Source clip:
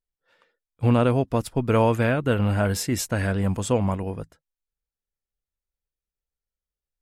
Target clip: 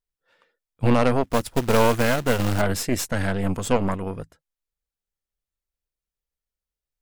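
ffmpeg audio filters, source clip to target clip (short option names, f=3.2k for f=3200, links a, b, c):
-filter_complex "[0:a]asplit=3[a][b][c];[a]afade=t=out:st=1.23:d=0.02[d];[b]acrusher=bits=3:mode=log:mix=0:aa=0.000001,afade=t=in:st=1.23:d=0.02,afade=t=out:st=2.6:d=0.02[e];[c]afade=t=in:st=2.6:d=0.02[f];[d][e][f]amix=inputs=3:normalize=0,aeval=exprs='0.473*(cos(1*acos(clip(val(0)/0.473,-1,1)))-cos(1*PI/2))+0.0944*(cos(6*acos(clip(val(0)/0.473,-1,1)))-cos(6*PI/2))':c=same"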